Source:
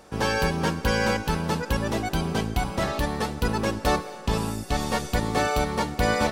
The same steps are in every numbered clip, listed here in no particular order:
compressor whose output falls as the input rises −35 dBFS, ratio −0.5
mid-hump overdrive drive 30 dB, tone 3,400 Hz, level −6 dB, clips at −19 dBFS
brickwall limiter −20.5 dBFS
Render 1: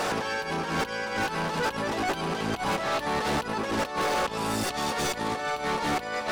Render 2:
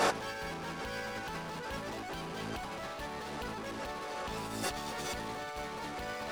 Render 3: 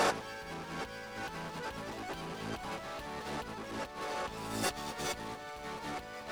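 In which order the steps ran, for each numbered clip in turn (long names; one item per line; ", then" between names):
compressor whose output falls as the input rises, then mid-hump overdrive, then brickwall limiter
mid-hump overdrive, then brickwall limiter, then compressor whose output falls as the input rises
mid-hump overdrive, then compressor whose output falls as the input rises, then brickwall limiter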